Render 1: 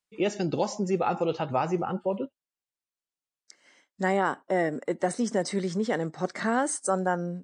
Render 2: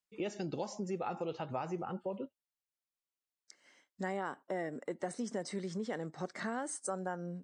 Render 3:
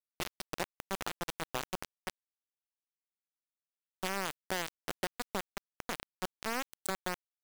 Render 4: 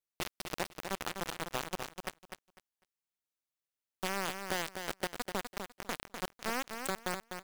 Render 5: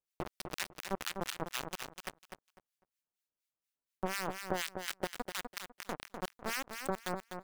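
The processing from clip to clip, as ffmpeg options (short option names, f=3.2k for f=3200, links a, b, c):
-af "acompressor=threshold=-33dB:ratio=2,volume=-5.5dB"
-af "acrusher=bits=4:mix=0:aa=0.000001,volume=1dB"
-af "aecho=1:1:250|500|750:0.447|0.0893|0.0179"
-filter_complex "[0:a]acrossover=split=1300[a][b];[a]aeval=exprs='val(0)*(1-1/2+1/2*cos(2*PI*4.2*n/s))':c=same[c];[b]aeval=exprs='val(0)*(1-1/2-1/2*cos(2*PI*4.2*n/s))':c=same[d];[c][d]amix=inputs=2:normalize=0,volume=3.5dB"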